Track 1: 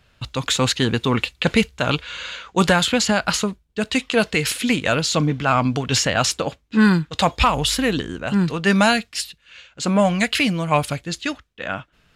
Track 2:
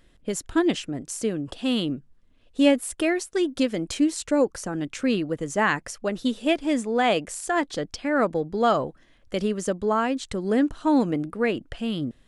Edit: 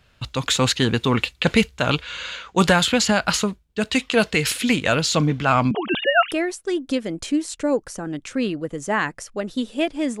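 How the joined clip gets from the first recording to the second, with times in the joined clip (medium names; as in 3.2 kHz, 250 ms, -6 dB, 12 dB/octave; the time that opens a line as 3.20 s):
track 1
5.71–6.32 s: formants replaced by sine waves
6.32 s: go over to track 2 from 3.00 s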